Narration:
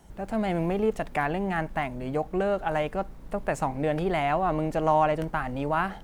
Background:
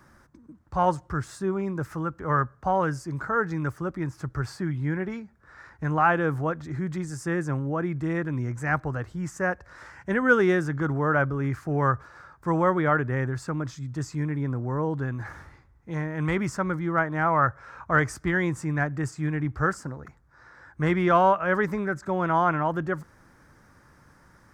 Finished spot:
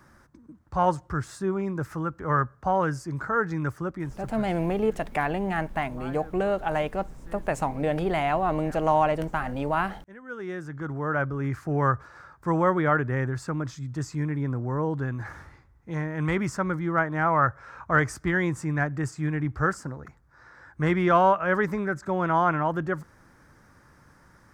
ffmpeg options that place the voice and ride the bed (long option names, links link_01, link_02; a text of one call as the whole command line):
ffmpeg -i stem1.wav -i stem2.wav -filter_complex "[0:a]adelay=4000,volume=0.5dB[link_01];[1:a]volume=21.5dB,afade=type=out:start_time=3.81:duration=0.74:silence=0.0841395,afade=type=in:start_time=10.27:duration=1.41:silence=0.0841395[link_02];[link_01][link_02]amix=inputs=2:normalize=0" out.wav